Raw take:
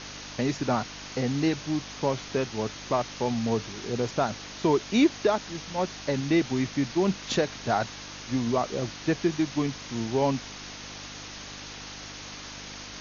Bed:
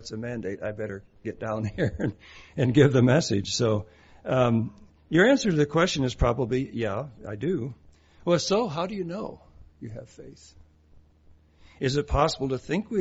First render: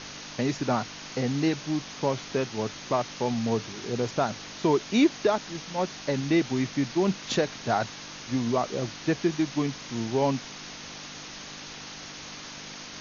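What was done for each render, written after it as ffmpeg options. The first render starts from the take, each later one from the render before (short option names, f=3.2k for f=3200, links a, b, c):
-af "bandreject=f=50:t=h:w=4,bandreject=f=100:t=h:w=4"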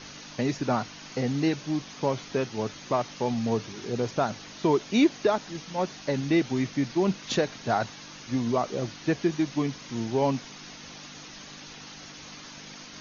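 -af "afftdn=nr=6:nf=-42"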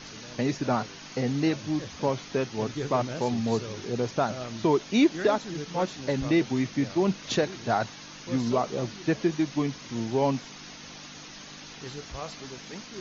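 -filter_complex "[1:a]volume=-15.5dB[a];[0:a][a]amix=inputs=2:normalize=0"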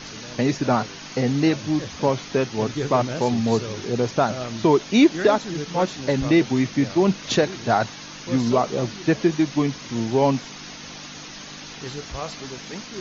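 -af "volume=6dB"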